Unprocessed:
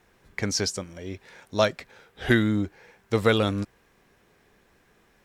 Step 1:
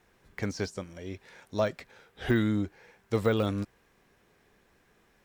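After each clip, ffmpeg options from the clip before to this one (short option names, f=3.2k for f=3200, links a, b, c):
-af "deesser=1,volume=-3.5dB"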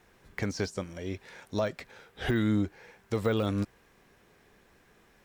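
-af "alimiter=limit=-21.5dB:level=0:latency=1:release=234,volume=3.5dB"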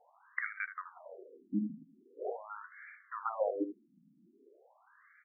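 -af "aecho=1:1:77:0.299,afftfilt=real='re*between(b*sr/1024,210*pow(1700/210,0.5+0.5*sin(2*PI*0.43*pts/sr))/1.41,210*pow(1700/210,0.5+0.5*sin(2*PI*0.43*pts/sr))*1.41)':imag='im*between(b*sr/1024,210*pow(1700/210,0.5+0.5*sin(2*PI*0.43*pts/sr))/1.41,210*pow(1700/210,0.5+0.5*sin(2*PI*0.43*pts/sr))*1.41)':win_size=1024:overlap=0.75,volume=4dB"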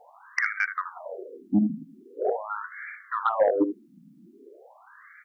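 -af "aeval=exprs='0.119*sin(PI/2*1.58*val(0)/0.119)':c=same,volume=5dB"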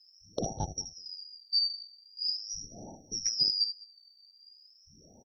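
-af "afftfilt=real='real(if(lt(b,272),68*(eq(floor(b/68),0)*1+eq(floor(b/68),1)*2+eq(floor(b/68),2)*3+eq(floor(b/68),3)*0)+mod(b,68),b),0)':imag='imag(if(lt(b,272),68*(eq(floor(b/68),0)*1+eq(floor(b/68),1)*2+eq(floor(b/68),2)*3+eq(floor(b/68),3)*0)+mod(b,68),b),0)':win_size=2048:overlap=0.75,aecho=1:1:203:0.075,volume=-6.5dB"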